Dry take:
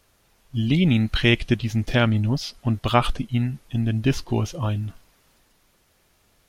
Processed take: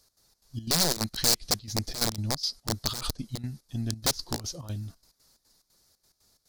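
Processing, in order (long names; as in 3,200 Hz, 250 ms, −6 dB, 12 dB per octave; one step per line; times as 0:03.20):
wrap-around overflow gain 14 dB
gate pattern "x.xx.xx.xxx." 179 BPM −12 dB
high shelf with overshoot 3,600 Hz +8 dB, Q 3
level −8.5 dB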